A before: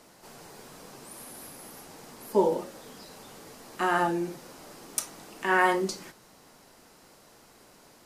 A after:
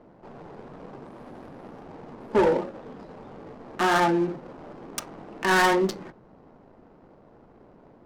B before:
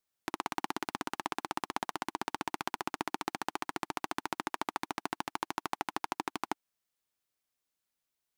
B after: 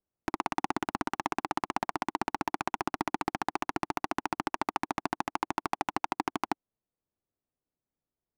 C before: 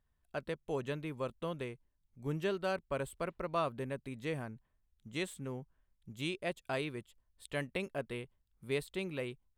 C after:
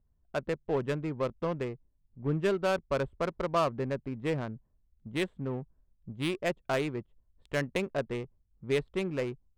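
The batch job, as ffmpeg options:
-af "asoftclip=type=tanh:threshold=-22dB,adynamicsmooth=sensitivity=8:basefreq=620,volume=7.5dB"

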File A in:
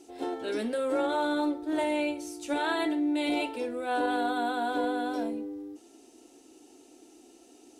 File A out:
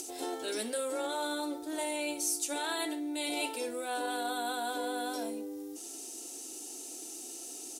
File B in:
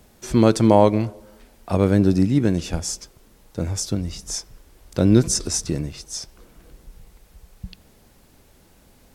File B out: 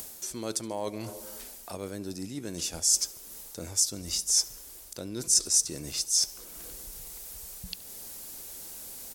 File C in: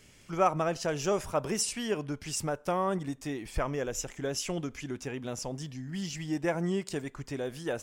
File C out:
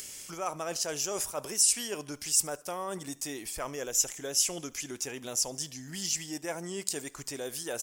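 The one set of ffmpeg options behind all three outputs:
-af "highshelf=f=6k:g=8,areverse,acompressor=threshold=-30dB:ratio=5,areverse,bass=f=250:g=-9,treble=f=4k:g=11,acompressor=mode=upward:threshold=-35dB:ratio=2.5,aecho=1:1:72|144|216:0.0668|0.0354|0.0188,volume=-1dB"

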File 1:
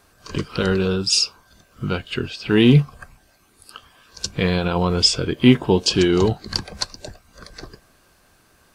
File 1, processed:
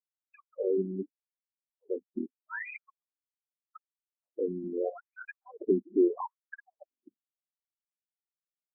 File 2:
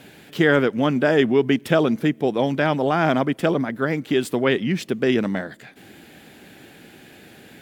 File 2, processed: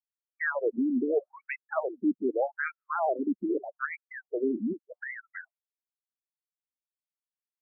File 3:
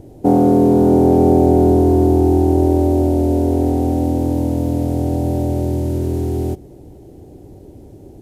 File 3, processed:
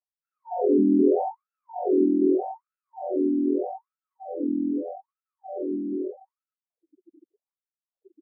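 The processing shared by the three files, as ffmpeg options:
-af "afftfilt=real='re*gte(hypot(re,im),0.0891)':imag='im*gte(hypot(re,im),0.0891)':win_size=1024:overlap=0.75,afftfilt=real='re*between(b*sr/1024,250*pow(1900/250,0.5+0.5*sin(2*PI*0.81*pts/sr))/1.41,250*pow(1900/250,0.5+0.5*sin(2*PI*0.81*pts/sr))*1.41)':imag='im*between(b*sr/1024,250*pow(1900/250,0.5+0.5*sin(2*PI*0.81*pts/sr))/1.41,250*pow(1900/250,0.5+0.5*sin(2*PI*0.81*pts/sr))*1.41)':win_size=1024:overlap=0.75,volume=-4.5dB"

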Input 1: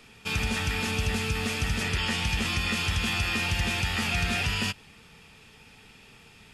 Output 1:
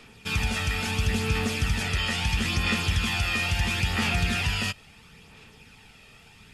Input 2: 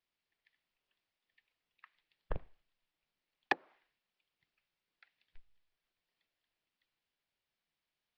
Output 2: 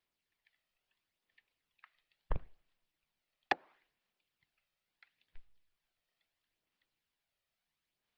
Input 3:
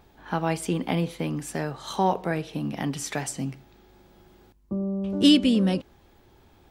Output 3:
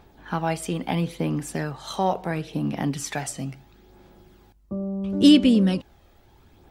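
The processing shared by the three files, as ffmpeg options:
-af "aphaser=in_gain=1:out_gain=1:delay=1.6:decay=0.35:speed=0.74:type=sinusoidal"

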